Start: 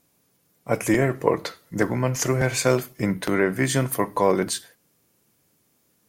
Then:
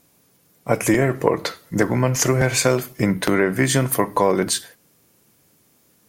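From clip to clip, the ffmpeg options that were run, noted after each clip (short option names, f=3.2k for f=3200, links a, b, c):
-af "acompressor=threshold=-22dB:ratio=2.5,volume=7dB"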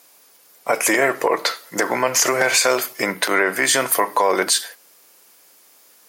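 -af "highpass=620,equalizer=f=4.8k:w=5.6:g=3,alimiter=level_in=13.5dB:limit=-1dB:release=50:level=0:latency=1,volume=-5dB"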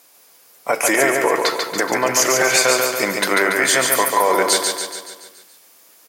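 -af "aecho=1:1:142|284|426|568|710|852|994:0.631|0.347|0.191|0.105|0.0577|0.0318|0.0175"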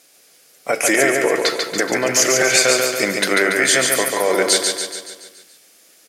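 -af "lowpass=11k,equalizer=f=980:t=o:w=0.59:g=-12,volume=2dB"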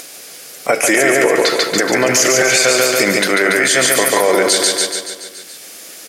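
-af "acompressor=mode=upward:threshold=-33dB:ratio=2.5,alimiter=level_in=10dB:limit=-1dB:release=50:level=0:latency=1,volume=-2dB"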